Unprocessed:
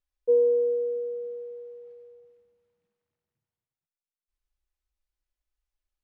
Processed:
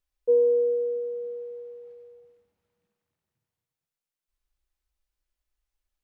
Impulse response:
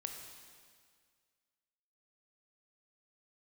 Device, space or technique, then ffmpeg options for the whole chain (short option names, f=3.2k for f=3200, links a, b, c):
ducked reverb: -filter_complex "[0:a]asplit=3[a][b][c];[1:a]atrim=start_sample=2205[d];[b][d]afir=irnorm=-1:irlink=0[e];[c]apad=whole_len=266264[f];[e][f]sidechaincompress=threshold=-35dB:ratio=8:attack=16:release=367,volume=-5dB[g];[a][g]amix=inputs=2:normalize=0"